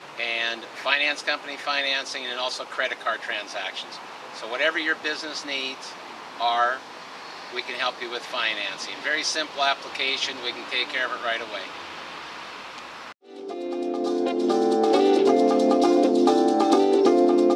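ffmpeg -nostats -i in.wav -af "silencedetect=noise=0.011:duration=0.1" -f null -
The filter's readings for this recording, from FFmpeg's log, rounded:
silence_start: 13.12
silence_end: 13.29 | silence_duration: 0.16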